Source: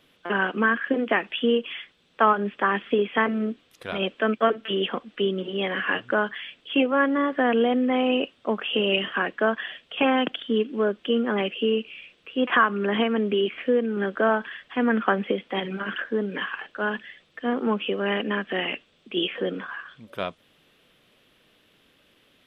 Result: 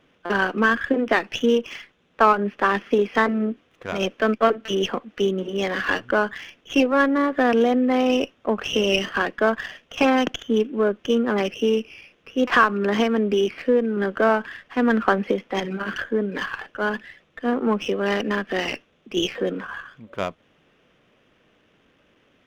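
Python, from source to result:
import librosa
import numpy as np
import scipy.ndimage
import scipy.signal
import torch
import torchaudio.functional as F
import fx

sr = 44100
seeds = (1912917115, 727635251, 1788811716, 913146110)

y = fx.wiener(x, sr, points=9)
y = fx.running_max(y, sr, window=3)
y = F.gain(torch.from_numpy(y), 3.0).numpy()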